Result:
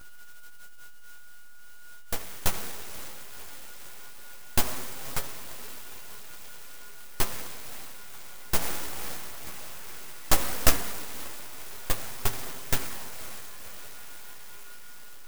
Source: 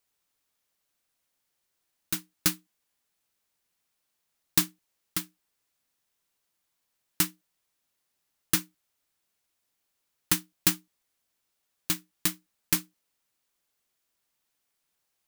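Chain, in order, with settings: diffused feedback echo 0.539 s, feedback 70%, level -13.5 dB; reverb RT60 2.2 s, pre-delay 62 ms, DRR 6.5 dB; downsampling 11025 Hz; 8.59–10.75 bell 2600 Hz +7.5 dB 1.5 oct; soft clip -11.5 dBFS, distortion -21 dB; tilt +4.5 dB/oct; whine 720 Hz -43 dBFS; full-wave rectifier; chorus voices 2, 0.16 Hz, delay 12 ms, depth 4.6 ms; de-hum 55.32 Hz, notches 38; clock jitter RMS 0.083 ms; gain +5.5 dB

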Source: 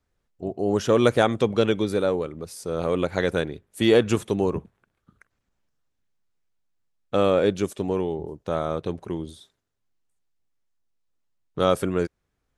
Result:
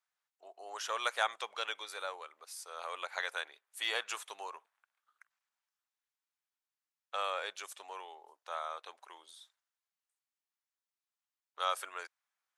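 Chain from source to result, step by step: HPF 850 Hz 24 dB/oct; gain -6 dB

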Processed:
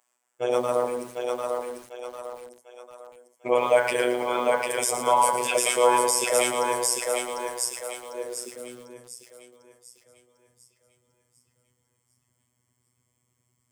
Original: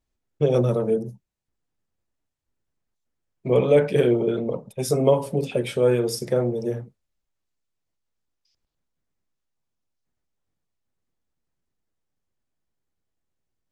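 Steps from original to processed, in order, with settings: thirty-one-band EQ 160 Hz +7 dB, 250 Hz +4 dB, 800 Hz -8 dB, 4000 Hz -11 dB, 8000 Hz +12 dB; in parallel at -1 dB: negative-ratio compressor -25 dBFS, ratio -0.5; on the sum: robotiser 123 Hz; on a send: thinning echo 0.748 s, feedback 43%, high-pass 360 Hz, level -3 dB; on the sum: high-pass sweep 810 Hz -> 82 Hz, 8.05–8.96; maximiser +8.5 dB; lo-fi delay 0.113 s, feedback 55%, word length 6-bit, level -10 dB; gain -4 dB

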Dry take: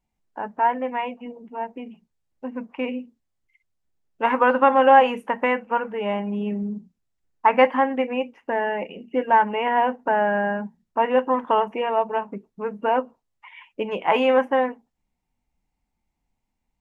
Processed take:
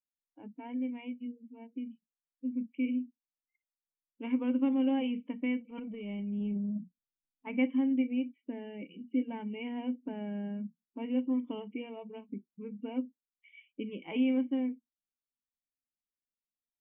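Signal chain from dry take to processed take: spectral noise reduction 23 dB; vocal tract filter i; 5.6–7.47 transient shaper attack -6 dB, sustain +10 dB

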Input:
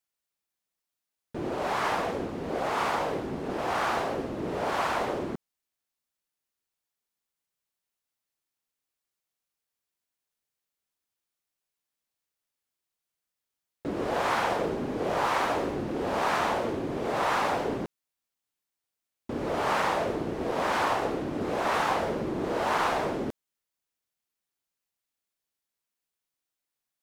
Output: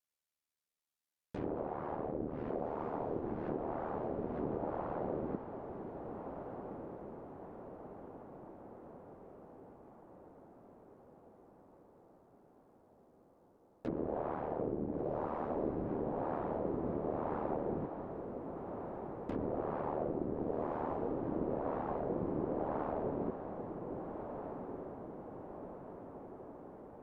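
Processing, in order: ring modulator 38 Hz; treble ducked by the level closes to 570 Hz, closed at -30 dBFS; diffused feedback echo 1.545 s, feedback 57%, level -7 dB; gain -2.5 dB

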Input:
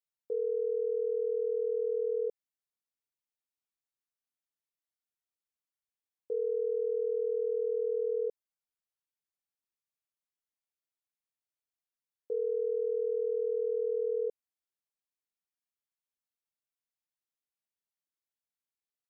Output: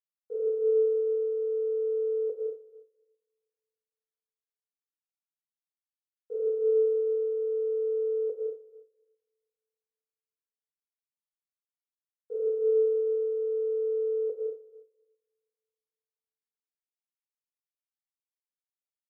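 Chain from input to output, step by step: HPF 560 Hz 6 dB/oct; Schroeder reverb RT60 2.4 s, combs from 30 ms, DRR -4.5 dB; upward expander 2.5:1, over -54 dBFS; gain +9 dB

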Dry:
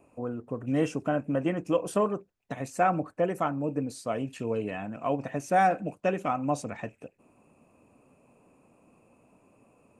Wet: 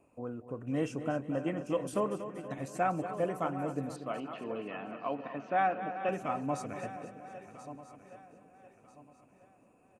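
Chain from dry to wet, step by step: regenerating reverse delay 0.646 s, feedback 54%, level -12.5 dB; 3.96–6.09 speaker cabinet 230–3600 Hz, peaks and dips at 470 Hz -4 dB, 1200 Hz +4 dB, 3000 Hz +4 dB; feedback echo 0.238 s, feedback 52%, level -11.5 dB; gain -6 dB

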